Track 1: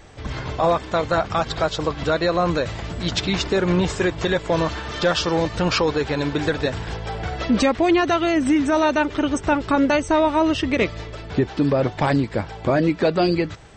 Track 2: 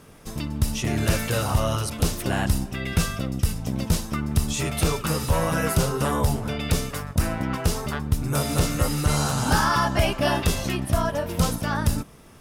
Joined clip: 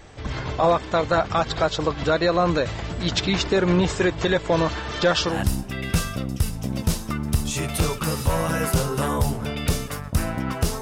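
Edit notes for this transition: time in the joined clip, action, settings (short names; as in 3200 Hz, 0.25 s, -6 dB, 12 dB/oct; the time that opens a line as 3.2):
track 1
5.33 switch to track 2 from 2.36 s, crossfade 0.16 s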